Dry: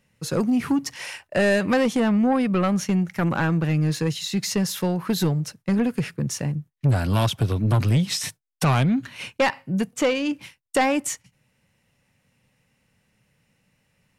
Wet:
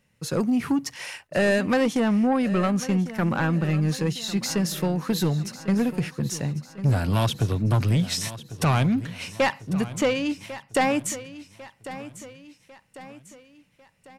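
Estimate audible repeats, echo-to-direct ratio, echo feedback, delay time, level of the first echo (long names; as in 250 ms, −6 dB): 4, −14.0 dB, 47%, 1,098 ms, −15.0 dB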